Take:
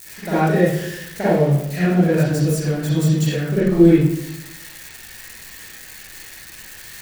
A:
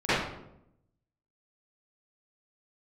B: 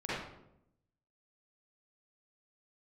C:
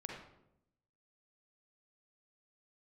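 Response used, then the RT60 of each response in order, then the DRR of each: B; 0.80 s, 0.80 s, 0.80 s; -19.5 dB, -11.0 dB, -1.0 dB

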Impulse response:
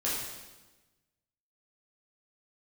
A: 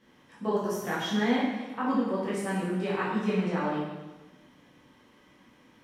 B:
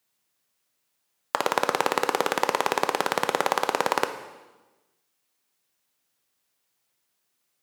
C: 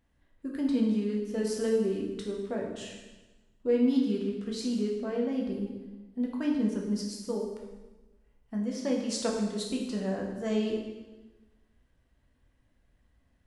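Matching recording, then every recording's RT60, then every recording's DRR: A; 1.2 s, 1.2 s, 1.2 s; -8.0 dB, 8.5 dB, -1.0 dB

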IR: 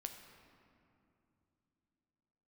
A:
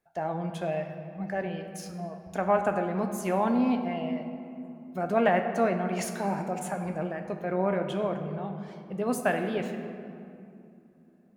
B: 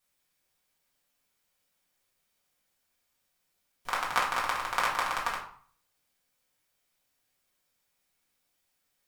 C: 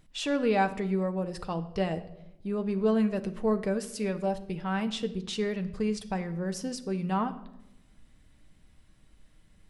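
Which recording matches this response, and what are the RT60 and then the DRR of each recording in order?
A; 2.9 s, 0.50 s, 0.90 s; 5.0 dB, -5.5 dB, 7.5 dB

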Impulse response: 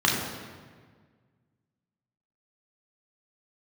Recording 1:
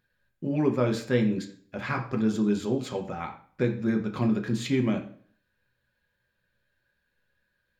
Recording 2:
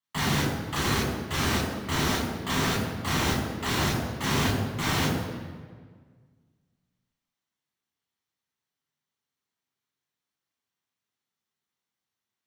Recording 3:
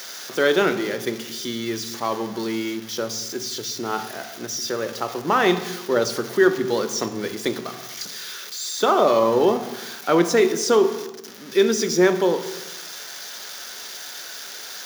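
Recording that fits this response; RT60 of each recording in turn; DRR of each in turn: 2; 0.50 s, 1.6 s, 0.95 s; 3.0 dB, -3.0 dB, 8.0 dB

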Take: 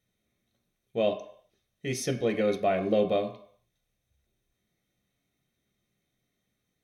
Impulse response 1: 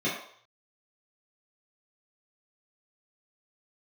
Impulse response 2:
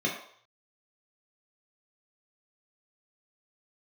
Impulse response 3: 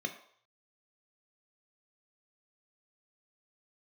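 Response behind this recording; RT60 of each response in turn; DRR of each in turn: 3; 0.60 s, 0.60 s, 0.60 s; -9.5 dB, -3.0 dB, 5.0 dB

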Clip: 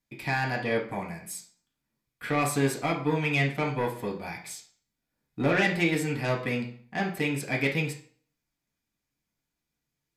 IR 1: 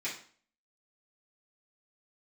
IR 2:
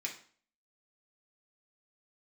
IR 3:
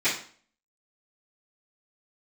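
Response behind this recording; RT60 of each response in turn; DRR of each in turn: 2; 0.45 s, 0.45 s, 0.45 s; -10.0 dB, -2.0 dB, -17.5 dB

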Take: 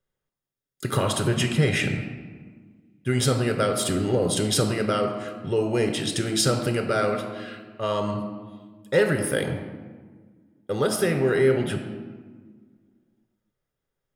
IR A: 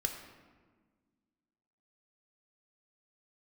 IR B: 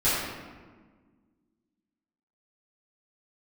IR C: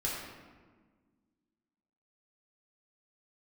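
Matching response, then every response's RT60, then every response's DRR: A; 1.5 s, 1.5 s, 1.5 s; 4.0 dB, -14.0 dB, -5.5 dB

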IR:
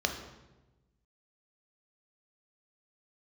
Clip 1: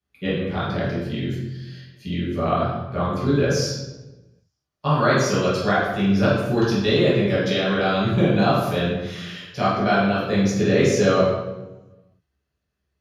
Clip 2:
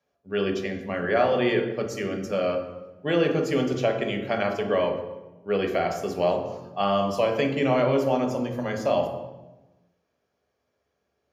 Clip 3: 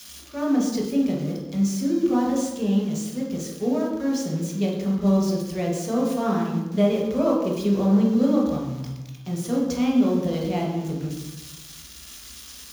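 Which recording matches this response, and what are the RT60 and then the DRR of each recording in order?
2; 1.1 s, 1.1 s, 1.1 s; -10.5 dB, 3.5 dB, -3.0 dB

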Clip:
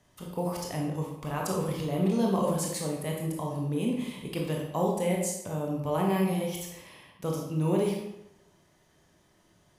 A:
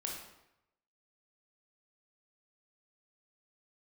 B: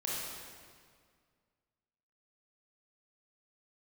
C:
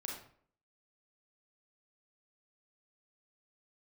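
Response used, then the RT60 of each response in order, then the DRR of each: A; 0.85 s, 1.9 s, 0.55 s; -1.0 dB, -6.0 dB, -1.5 dB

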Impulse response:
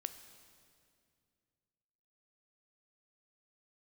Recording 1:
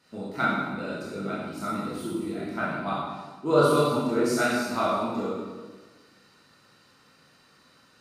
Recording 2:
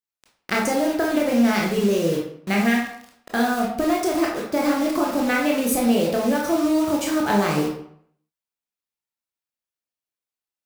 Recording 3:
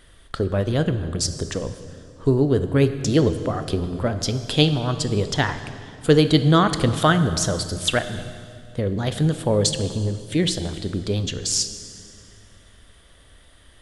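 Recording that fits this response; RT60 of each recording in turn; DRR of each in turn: 3; 1.4 s, 0.65 s, 2.3 s; -8.0 dB, -2.0 dB, 9.5 dB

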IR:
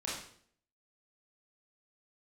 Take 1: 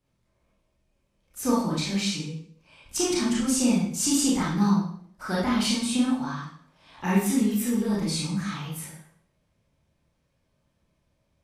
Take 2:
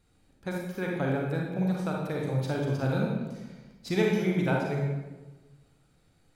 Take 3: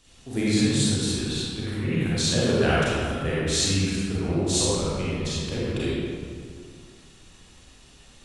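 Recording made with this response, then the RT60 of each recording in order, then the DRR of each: 1; 0.60 s, 1.2 s, 2.1 s; -7.0 dB, -1.5 dB, -9.0 dB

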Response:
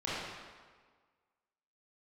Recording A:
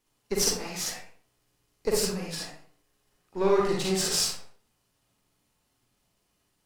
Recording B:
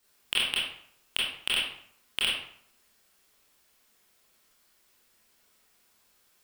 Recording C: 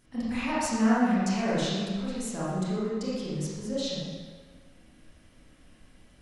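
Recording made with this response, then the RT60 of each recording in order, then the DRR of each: C; 0.50 s, 0.65 s, 1.6 s; -2.5 dB, -7.0 dB, -10.0 dB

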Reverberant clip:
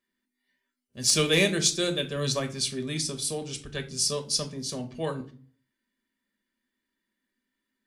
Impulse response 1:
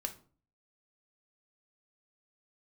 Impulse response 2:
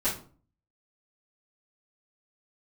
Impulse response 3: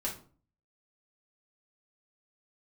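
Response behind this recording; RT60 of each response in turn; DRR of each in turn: 1; 0.45 s, 0.45 s, 0.45 s; 4.5 dB, -13.0 dB, -4.5 dB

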